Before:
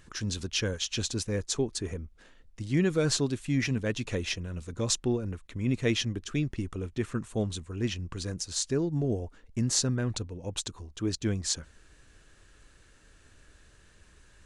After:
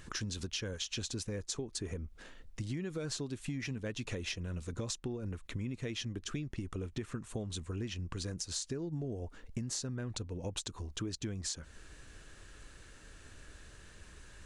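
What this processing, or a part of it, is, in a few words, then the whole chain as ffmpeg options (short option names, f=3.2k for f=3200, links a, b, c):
serial compression, leveller first: -af "acompressor=threshold=-29dB:ratio=2.5,acompressor=threshold=-40dB:ratio=6,volume=4dB"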